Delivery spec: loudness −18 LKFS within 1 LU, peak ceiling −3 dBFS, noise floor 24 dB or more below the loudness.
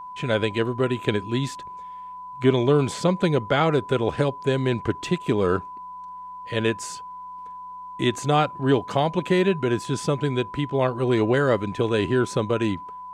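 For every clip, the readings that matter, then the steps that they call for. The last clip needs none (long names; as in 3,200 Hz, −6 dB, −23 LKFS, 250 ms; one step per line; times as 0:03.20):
interfering tone 1,000 Hz; level of the tone −35 dBFS; integrated loudness −23.5 LKFS; sample peak −6.0 dBFS; target loudness −18.0 LKFS
→ notch filter 1,000 Hz, Q 30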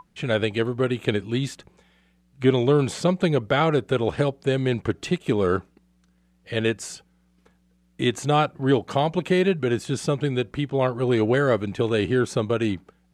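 interfering tone none found; integrated loudness −23.5 LKFS; sample peak −6.0 dBFS; target loudness −18.0 LKFS
→ level +5.5 dB
brickwall limiter −3 dBFS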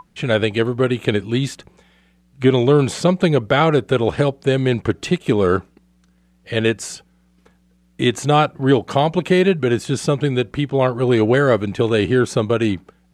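integrated loudness −18.0 LKFS; sample peak −3.0 dBFS; background noise floor −58 dBFS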